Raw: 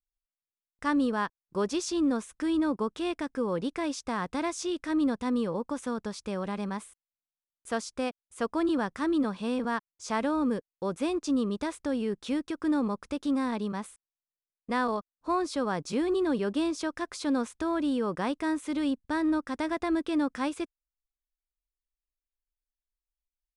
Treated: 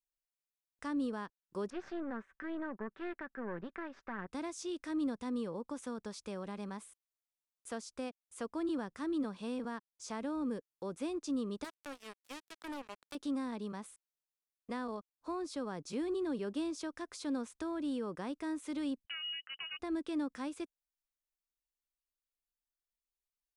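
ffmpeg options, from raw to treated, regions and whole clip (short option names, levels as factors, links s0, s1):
-filter_complex "[0:a]asettb=1/sr,asplit=3[s0][s1][s2];[s0]atrim=end=1.704[s3];[s1]atrim=start=1.7:end=4.27,asetpts=PTS-STARTPTS,afade=t=in:d=0.004:c=qsin,afade=t=out:st=2.566:d=0.004:c=qsin,aecho=1:1:5.2:0.47,atrim=end_sample=113337,aeval=exprs='(tanh(20*val(0)+0.8)-tanh(0.8))/20':c=same,lowpass=f=1700:t=q:w=3.9[s4];[s2]atrim=start=4.266[s5];[s3][s4]acrossfade=d=0.004:c1=hsin:c2=qsin[s6];[s6][s5]acrossfade=d=0.004:c1=qsin:c2=hsin,asettb=1/sr,asplit=3[s7][s8][s9];[s7]atrim=end=11.644[s10];[s8]atrim=start=11.64:end=13.15,asetpts=PTS-STARTPTS,afade=t=in:d=0.004:c=qsin,afade=t=out:st=1.506:d=0.004:c=qsin,equalizer=f=200:t=o:w=2.1:g=-11,acrusher=bits=4:mix=0:aa=0.5[s11];[s9]atrim=start=13.146[s12];[s10][s11]acrossfade=d=0.004:c1=hsin:c2=qsin[s13];[s13][s12]acrossfade=d=0.004:c1=qsin:c2=hsin,asettb=1/sr,asplit=3[s14][s15][s16];[s14]atrim=end=19.064[s17];[s15]atrim=start=19.06:end=19.79,asetpts=PTS-STARTPTS,afade=t=in:d=0.004:c=qsin,afade=t=out:st=0.726:d=0.004:c=qsin,highpass=120,lowpass=f=2700:t=q:w=0.5098,lowpass=f=2700:t=q:w=0.6013,lowpass=f=2700:t=q:w=0.9,lowpass=f=2700:t=q:w=2.563,afreqshift=-3200[s18];[s16]atrim=start=19.786[s19];[s17][s18]acrossfade=d=0.004:c1=hsin:c2=qsin[s20];[s20][s19]acrossfade=d=0.004:c1=qsin:c2=hsin,bass=f=250:g=-6,treble=f=4000:g=3,acrossover=split=380[s21][s22];[s22]acompressor=threshold=0.00708:ratio=2[s23];[s21][s23]amix=inputs=2:normalize=0,volume=0.562"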